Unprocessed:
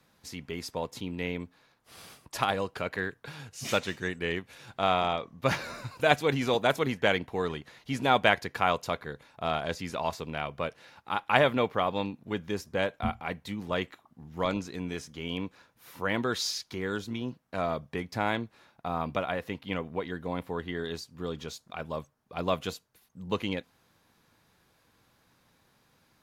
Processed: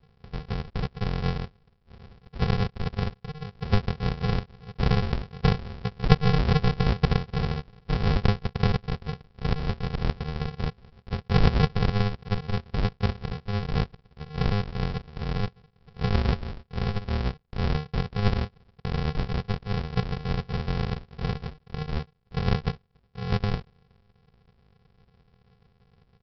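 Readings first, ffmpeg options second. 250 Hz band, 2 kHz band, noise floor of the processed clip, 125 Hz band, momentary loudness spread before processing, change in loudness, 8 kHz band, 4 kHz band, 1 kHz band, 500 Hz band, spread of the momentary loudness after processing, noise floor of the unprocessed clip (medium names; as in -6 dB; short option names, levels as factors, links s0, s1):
+4.5 dB, -4.5 dB, -64 dBFS, +13.5 dB, 14 LU, +2.5 dB, under -10 dB, -1.0 dB, -3.5 dB, -3.0 dB, 12 LU, -68 dBFS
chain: -af "lowshelf=f=440:g=9.5,aresample=11025,acrusher=samples=36:mix=1:aa=0.000001,aresample=44100,volume=1.12"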